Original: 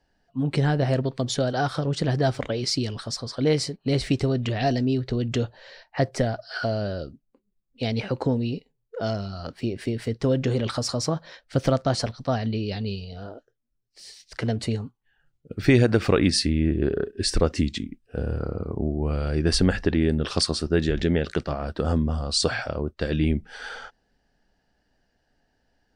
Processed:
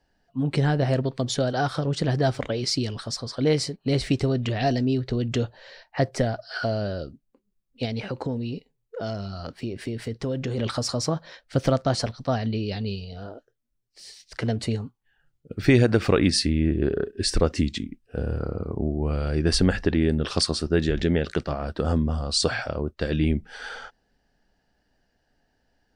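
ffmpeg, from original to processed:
-filter_complex "[0:a]asettb=1/sr,asplit=3[s0][s1][s2];[s0]atrim=end=7.854[s3];[s1]atrim=start=7.85:end=10.58,asetpts=PTS-STARTPTS,afade=t=in:d=0.004:c=qsin,afade=t=out:st=2.726:d=0.004:c=qsin,acompressor=threshold=0.0398:ratio=2:attack=3.2:release=140:knee=1:detection=peak[s4];[s2]atrim=start=10.576[s5];[s3][s4]acrossfade=d=0.004:c1=hsin:c2=qsin[s6];[s6][s5]acrossfade=d=0.004:c1=qsin:c2=hsin"

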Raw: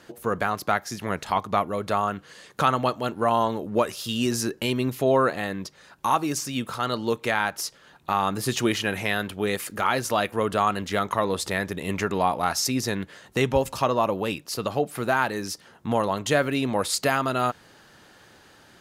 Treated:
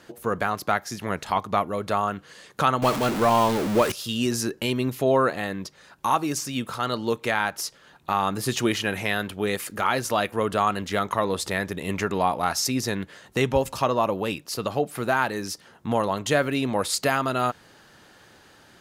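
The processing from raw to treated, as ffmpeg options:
-filter_complex "[0:a]asettb=1/sr,asplit=3[s0][s1][s2];[s0]atrim=end=2.824[s3];[s1]atrim=start=2.82:end=3.92,asetpts=PTS-STARTPTS,afade=t=in:d=0.004:c=qsin,afade=t=out:st=1.096:d=0.004:c=qsin,aeval=exprs='val(0)+0.5*0.0708*sgn(val(0))':c=same[s4];[s2]atrim=start=3.916[s5];[s3][s4]acrossfade=d=0.004:c1=hsin:c2=qsin[s6];[s6][s5]acrossfade=d=0.004:c1=qsin:c2=hsin"

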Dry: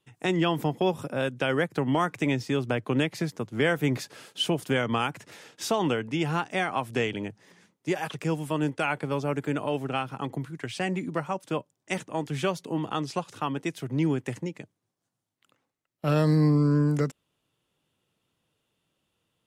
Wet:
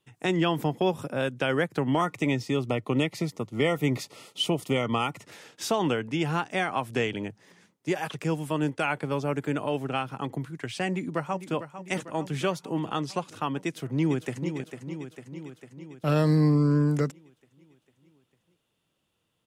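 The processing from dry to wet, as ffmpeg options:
-filter_complex "[0:a]asettb=1/sr,asplit=3[s0][s1][s2];[s0]atrim=end=2.014[s3];[s1]atrim=start=2.01:end=5.26,asetpts=PTS-STARTPTS,afade=t=in:d=0.004:c=qsin,afade=t=out:st=3.246:d=0.004:c=qsin,asuperstop=centerf=1600:order=20:qfactor=4.6[s4];[s2]atrim=start=5.256[s5];[s3][s4]acrossfade=d=0.004:c1=hsin:c2=qsin[s6];[s6][s5]acrossfade=d=0.004:c1=qsin:c2=hsin,asplit=2[s7][s8];[s8]afade=t=in:st=10.88:d=0.01,afade=t=out:st=11.55:d=0.01,aecho=0:1:450|900|1350|1800|2250|2700|3150|3600:0.266073|0.172947|0.112416|0.0730702|0.0474956|0.0308721|0.0200669|0.0130435[s9];[s7][s9]amix=inputs=2:normalize=0,asplit=2[s10][s11];[s11]afade=t=in:st=13.64:d=0.01,afade=t=out:st=14.52:d=0.01,aecho=0:1:450|900|1350|1800|2250|2700|3150|3600|4050:0.375837|0.244294|0.158791|0.103214|0.0670893|0.0436081|0.0283452|0.0184244|0.0119759[s12];[s10][s12]amix=inputs=2:normalize=0"

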